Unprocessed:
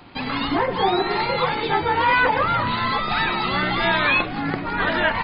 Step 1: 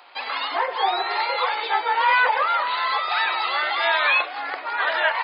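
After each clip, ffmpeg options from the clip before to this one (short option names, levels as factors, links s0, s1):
-af "highpass=f=570:w=0.5412,highpass=f=570:w=1.3066"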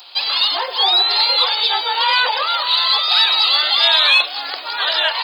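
-af "aexciter=amount=9.1:drive=5.7:freq=3100"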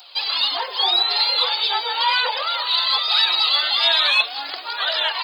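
-af "flanger=delay=1.3:depth=6:regen=37:speed=0.41:shape=triangular"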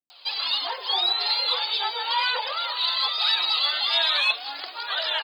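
-filter_complex "[0:a]acrossover=split=170[s0][s1];[s1]adelay=100[s2];[s0][s2]amix=inputs=2:normalize=0,volume=0.562"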